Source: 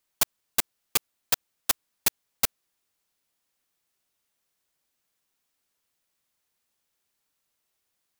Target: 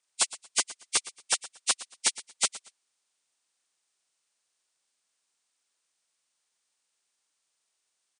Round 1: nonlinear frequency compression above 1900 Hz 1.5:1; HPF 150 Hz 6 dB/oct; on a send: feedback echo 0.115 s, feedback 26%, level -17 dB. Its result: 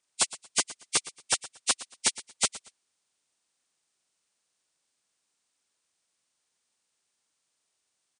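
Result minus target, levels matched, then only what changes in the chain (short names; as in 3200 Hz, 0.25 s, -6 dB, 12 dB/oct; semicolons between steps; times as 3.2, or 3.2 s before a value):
125 Hz band +9.0 dB
change: HPF 570 Hz 6 dB/oct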